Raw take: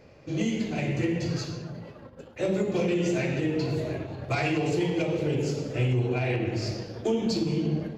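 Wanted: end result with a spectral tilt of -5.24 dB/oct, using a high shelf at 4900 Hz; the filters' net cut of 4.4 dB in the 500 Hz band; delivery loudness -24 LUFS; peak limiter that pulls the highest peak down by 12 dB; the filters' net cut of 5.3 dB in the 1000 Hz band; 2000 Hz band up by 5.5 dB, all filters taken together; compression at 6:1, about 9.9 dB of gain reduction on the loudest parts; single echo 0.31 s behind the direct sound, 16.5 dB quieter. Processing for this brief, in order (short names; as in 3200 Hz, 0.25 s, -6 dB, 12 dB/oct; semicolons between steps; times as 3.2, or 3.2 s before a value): bell 500 Hz -4.5 dB; bell 1000 Hz -8 dB; bell 2000 Hz +7 dB; high shelf 4900 Hz +8 dB; compressor 6:1, threshold -33 dBFS; limiter -35 dBFS; echo 0.31 s -16.5 dB; gain +19 dB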